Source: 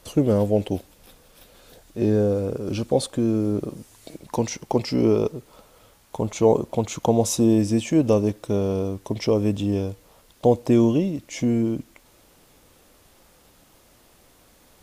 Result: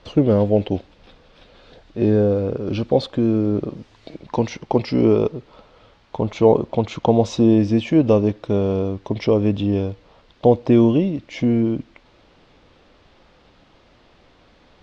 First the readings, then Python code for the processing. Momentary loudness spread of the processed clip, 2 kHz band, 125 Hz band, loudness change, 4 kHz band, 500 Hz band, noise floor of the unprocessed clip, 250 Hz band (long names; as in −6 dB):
11 LU, +3.5 dB, +3.5 dB, +3.5 dB, +1.0 dB, +3.5 dB, −56 dBFS, +3.5 dB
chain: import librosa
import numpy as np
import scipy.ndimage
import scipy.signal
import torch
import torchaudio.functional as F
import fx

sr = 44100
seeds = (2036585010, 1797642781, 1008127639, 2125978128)

y = scipy.signal.sosfilt(scipy.signal.butter(4, 4300.0, 'lowpass', fs=sr, output='sos'), x)
y = y * librosa.db_to_amplitude(3.5)